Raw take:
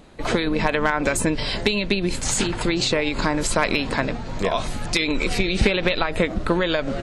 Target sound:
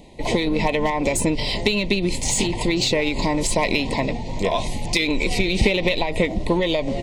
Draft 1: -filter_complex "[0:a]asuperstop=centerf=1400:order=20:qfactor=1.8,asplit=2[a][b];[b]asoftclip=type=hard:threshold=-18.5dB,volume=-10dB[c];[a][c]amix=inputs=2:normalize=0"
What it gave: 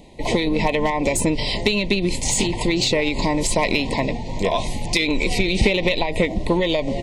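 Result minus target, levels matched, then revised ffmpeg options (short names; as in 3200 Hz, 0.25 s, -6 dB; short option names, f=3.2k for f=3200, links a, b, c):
hard clip: distortion -5 dB
-filter_complex "[0:a]asuperstop=centerf=1400:order=20:qfactor=1.8,asplit=2[a][b];[b]asoftclip=type=hard:threshold=-25.5dB,volume=-10dB[c];[a][c]amix=inputs=2:normalize=0"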